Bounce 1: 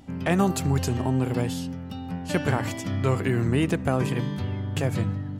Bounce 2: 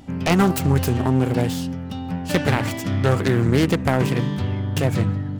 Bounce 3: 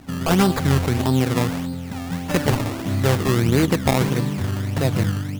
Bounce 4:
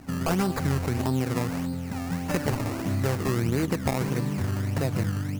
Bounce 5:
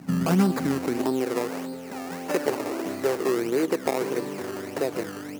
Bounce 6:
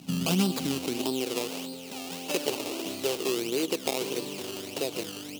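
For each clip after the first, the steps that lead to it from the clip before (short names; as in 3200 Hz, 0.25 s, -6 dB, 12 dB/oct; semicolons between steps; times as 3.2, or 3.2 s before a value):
self-modulated delay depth 0.35 ms; gain +5.5 dB
decimation with a swept rate 20×, swing 100% 1.6 Hz
compressor 2.5:1, threshold -22 dBFS, peak gain reduction 7 dB; bell 3400 Hz -7 dB 0.4 oct; gain -2 dB
high-pass sweep 160 Hz -> 390 Hz, 0–1.32
resonant high shelf 2300 Hz +8.5 dB, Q 3; gain -5 dB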